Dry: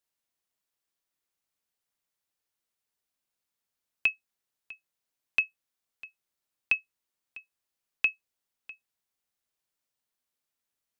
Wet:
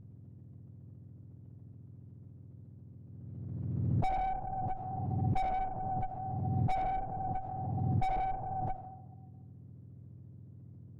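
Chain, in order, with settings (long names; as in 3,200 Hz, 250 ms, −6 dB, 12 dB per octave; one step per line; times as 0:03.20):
frequency axis turned over on the octave scale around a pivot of 1,400 Hz
convolution reverb RT60 1.1 s, pre-delay 25 ms, DRR 6 dB
tube saturation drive 41 dB, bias 0.25
spectral tilt −4.5 dB per octave
background raised ahead of every attack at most 24 dB per second
level +8.5 dB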